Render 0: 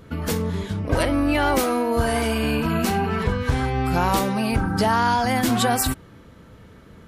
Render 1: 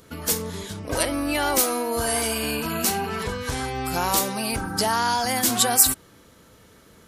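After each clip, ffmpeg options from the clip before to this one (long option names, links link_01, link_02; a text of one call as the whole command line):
ffmpeg -i in.wav -af "bass=frequency=250:gain=-7,treble=frequency=4000:gain=13,volume=-3dB" out.wav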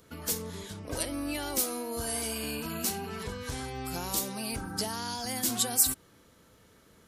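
ffmpeg -i in.wav -filter_complex "[0:a]acrossover=split=440|3000[link_01][link_02][link_03];[link_02]acompressor=threshold=-35dB:ratio=2.5[link_04];[link_01][link_04][link_03]amix=inputs=3:normalize=0,volume=-7.5dB" out.wav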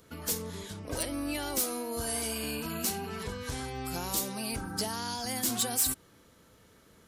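ffmpeg -i in.wav -af "asoftclip=type=hard:threshold=-22.5dB" out.wav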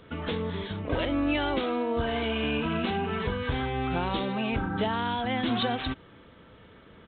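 ffmpeg -i in.wav -af "aresample=8000,aresample=44100,volume=8dB" out.wav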